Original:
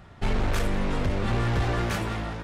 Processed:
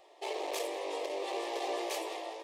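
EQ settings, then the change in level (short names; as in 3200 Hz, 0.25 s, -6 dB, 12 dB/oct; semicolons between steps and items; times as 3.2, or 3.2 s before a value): brick-wall FIR high-pass 280 Hz; fixed phaser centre 600 Hz, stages 4; -1.5 dB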